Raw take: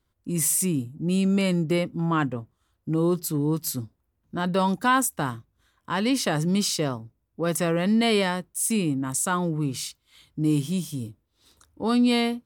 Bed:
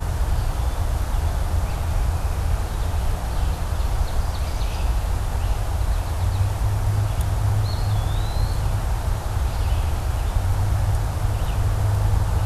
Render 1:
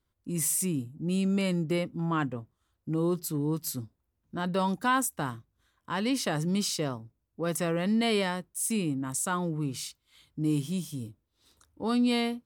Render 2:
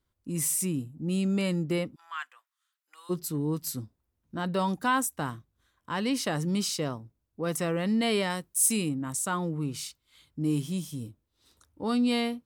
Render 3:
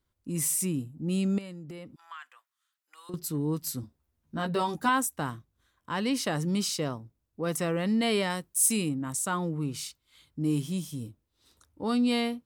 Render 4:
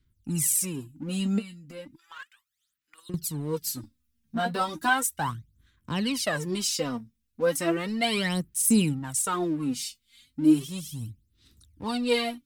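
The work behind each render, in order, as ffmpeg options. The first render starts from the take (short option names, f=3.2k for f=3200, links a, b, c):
-af "volume=-5dB"
-filter_complex "[0:a]asplit=3[a][b][c];[a]afade=t=out:st=1.94:d=0.02[d];[b]highpass=f=1.3k:w=0.5412,highpass=f=1.3k:w=1.3066,afade=t=in:st=1.94:d=0.02,afade=t=out:st=3.09:d=0.02[e];[c]afade=t=in:st=3.09:d=0.02[f];[d][e][f]amix=inputs=3:normalize=0,asettb=1/sr,asplit=3[g][h][i];[g]atrim=end=8.304[j];[h]atrim=start=8.3:end=8.89,asetpts=PTS-STARTPTS,afade=t=in:d=0.004:c=qsin,afade=t=out:st=0.586:d=0.004:c=qsin,highshelf=f=3.2k:g=8.5[k];[i]atrim=start=8.886[l];[j][k]acrossfade=d=0.004:c1=hsin:c2=qsin[m];[m][l]acrossfade=d=0.004:c1=qsin:c2=hsin"
-filter_complex "[0:a]asettb=1/sr,asplit=3[a][b][c];[a]atrim=end=1.384[d];[b]atrim=start=1.38:end=3.14,asetpts=PTS-STARTPTS,afade=t=in:d=0.004:c=qsin,afade=t=out:st=1.756:d=0.004:c=qsin,acompressor=threshold=-38dB:ratio=16:attack=3.2:release=140:knee=1:detection=peak[e];[c]atrim=start=3.136[f];[d][e]acrossfade=d=0.004:c1=hsin:c2=qsin[g];[g][f]acrossfade=d=0.004:c1=qsin:c2=hsin,asettb=1/sr,asplit=3[h][i][j];[h]atrim=end=3.824[k];[i]atrim=start=3.82:end=4.89,asetpts=PTS-STARTPTS,afade=t=in:d=0.004:c=qsin,afade=t=out:st=1.066:d=0.004:c=qsin,asplit=2[l][m];[m]adelay=13,volume=-3.5dB[n];[l][n]amix=inputs=2:normalize=0,atrim=end_sample=47187[o];[j]atrim=start=4.886[p];[k][o]acrossfade=d=0.004:c1=hsin:c2=qsin[q];[q][p]acrossfade=d=0.004:c1=qsin:c2=hsin"
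-filter_complex "[0:a]aphaser=in_gain=1:out_gain=1:delay=4.4:decay=0.75:speed=0.35:type=sinusoidal,acrossover=split=300|1600[a][b][c];[b]aeval=exprs='sgn(val(0))*max(abs(val(0))-0.00376,0)':c=same[d];[a][d][c]amix=inputs=3:normalize=0"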